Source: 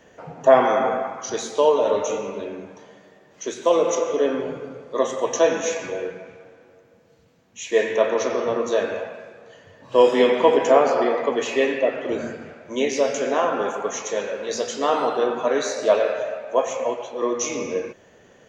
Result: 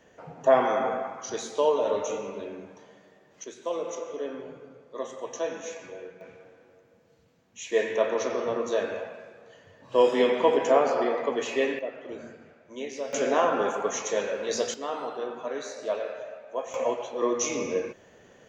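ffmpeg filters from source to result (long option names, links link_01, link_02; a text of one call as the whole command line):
ffmpeg -i in.wav -af "asetnsamples=nb_out_samples=441:pad=0,asendcmd='3.44 volume volume -13dB;6.21 volume volume -5.5dB;11.79 volume volume -13.5dB;13.13 volume volume -2dB;14.74 volume volume -12dB;16.74 volume volume -2.5dB',volume=-6dB" out.wav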